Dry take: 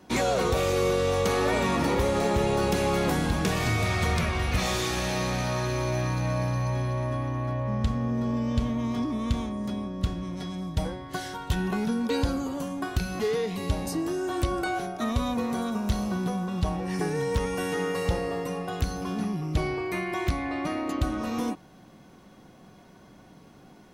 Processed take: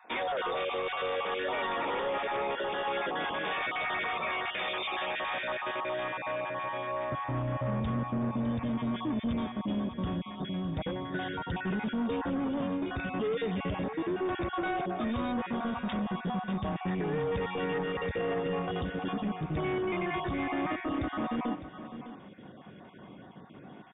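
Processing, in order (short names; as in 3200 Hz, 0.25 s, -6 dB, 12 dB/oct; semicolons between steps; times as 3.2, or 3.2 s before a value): random spectral dropouts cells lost 24%; HPF 590 Hz 12 dB/oct, from 7.12 s 110 Hz; limiter -23.5 dBFS, peak gain reduction 8 dB; soft clip -30.5 dBFS, distortion -14 dB; brick-wall FIR low-pass 3700 Hz; echo 0.606 s -12 dB; gain +3.5 dB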